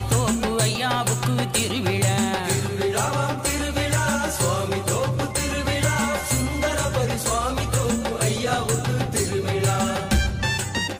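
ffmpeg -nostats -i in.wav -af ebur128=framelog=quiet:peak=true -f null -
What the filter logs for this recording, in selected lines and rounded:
Integrated loudness:
  I:         -22.6 LUFS
  Threshold: -32.6 LUFS
Loudness range:
  LRA:         0.8 LU
  Threshold: -42.7 LUFS
  LRA low:   -23.0 LUFS
  LRA high:  -22.2 LUFS
True peak:
  Peak:       -9.8 dBFS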